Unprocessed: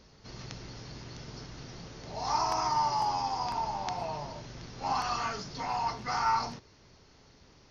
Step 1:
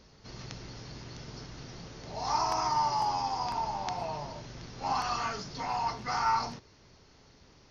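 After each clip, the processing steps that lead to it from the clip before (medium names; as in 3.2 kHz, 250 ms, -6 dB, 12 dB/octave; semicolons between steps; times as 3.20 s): no audible change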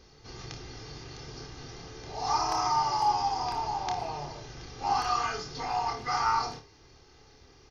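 comb 2.5 ms, depth 51%; on a send: flutter echo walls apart 4.7 m, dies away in 0.24 s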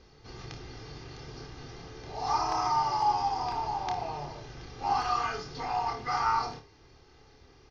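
distance through air 96 m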